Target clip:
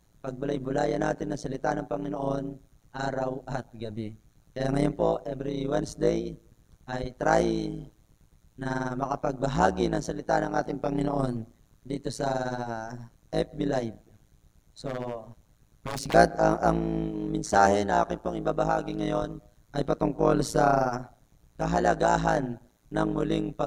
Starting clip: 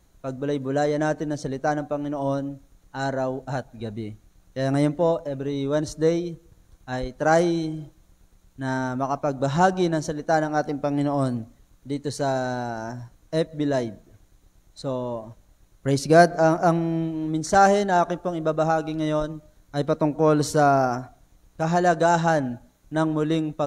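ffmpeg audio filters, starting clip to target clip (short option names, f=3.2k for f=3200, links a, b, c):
-filter_complex "[0:a]asplit=3[a][b][c];[a]afade=t=out:st=14.86:d=0.02[d];[b]aeval=exprs='0.0668*(abs(mod(val(0)/0.0668+3,4)-2)-1)':c=same,afade=t=in:st=14.86:d=0.02,afade=t=out:st=16.13:d=0.02[e];[c]afade=t=in:st=16.13:d=0.02[f];[d][e][f]amix=inputs=3:normalize=0,tremolo=f=110:d=0.947"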